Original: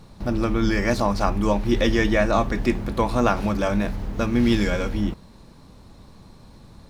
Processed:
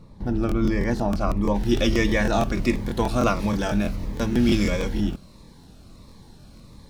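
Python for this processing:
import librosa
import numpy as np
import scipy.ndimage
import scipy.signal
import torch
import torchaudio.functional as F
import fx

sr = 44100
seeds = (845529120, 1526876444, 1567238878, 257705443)

y = fx.high_shelf(x, sr, hz=2200.0, db=fx.steps((0.0, -10.5), (1.54, 3.0)))
y = fx.buffer_crackle(y, sr, first_s=0.47, period_s=0.16, block=1024, kind='repeat')
y = fx.notch_cascade(y, sr, direction='falling', hz=1.5)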